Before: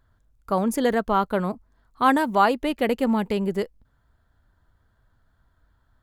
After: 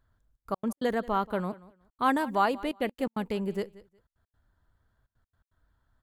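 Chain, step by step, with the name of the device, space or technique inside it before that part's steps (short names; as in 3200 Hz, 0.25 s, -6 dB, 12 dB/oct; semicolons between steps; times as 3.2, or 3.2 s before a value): trance gate with a delay (step gate "xxxx.x.x.xxxx" 166 bpm -60 dB; feedback echo 0.182 s, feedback 20%, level -20 dB); gain -6.5 dB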